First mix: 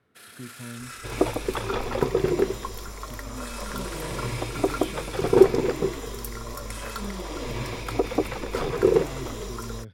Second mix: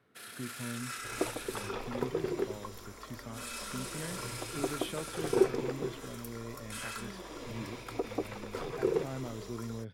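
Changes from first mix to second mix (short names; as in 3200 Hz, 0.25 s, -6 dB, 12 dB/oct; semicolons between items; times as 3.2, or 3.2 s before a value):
second sound -10.5 dB; master: add bell 61 Hz -14.5 dB 0.75 oct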